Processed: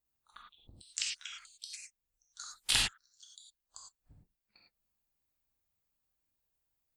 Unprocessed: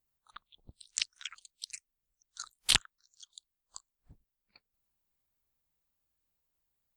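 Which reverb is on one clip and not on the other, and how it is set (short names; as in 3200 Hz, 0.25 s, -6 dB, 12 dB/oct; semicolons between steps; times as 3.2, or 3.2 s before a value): non-linear reverb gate 0.13 s flat, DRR -2.5 dB; gain -5.5 dB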